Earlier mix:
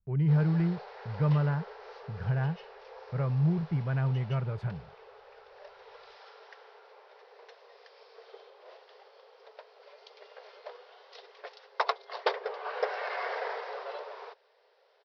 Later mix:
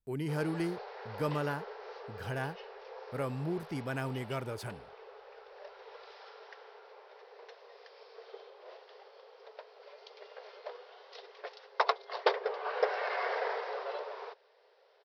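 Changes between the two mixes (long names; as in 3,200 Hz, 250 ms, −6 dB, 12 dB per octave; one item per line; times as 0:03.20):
speech: remove low-pass filter 2,000 Hz 12 dB per octave
master: add low shelf with overshoot 210 Hz −7.5 dB, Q 3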